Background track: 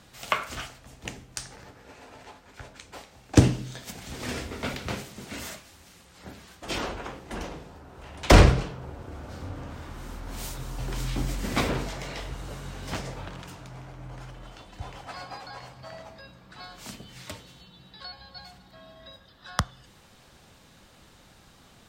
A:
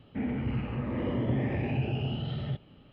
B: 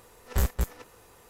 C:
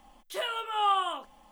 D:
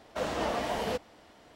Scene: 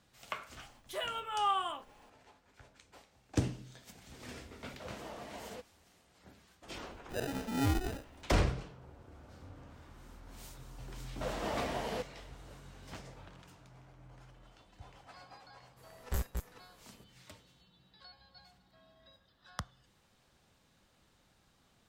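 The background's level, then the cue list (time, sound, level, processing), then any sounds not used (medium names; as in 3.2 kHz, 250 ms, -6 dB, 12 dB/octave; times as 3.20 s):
background track -14.5 dB
0.59 s: add C -5.5 dB
4.64 s: add D -15.5 dB
6.79 s: add C -4.5 dB + sample-and-hold 40×
11.05 s: add D -6 dB
15.76 s: add B -8.5 dB, fades 0.02 s + gain riding
not used: A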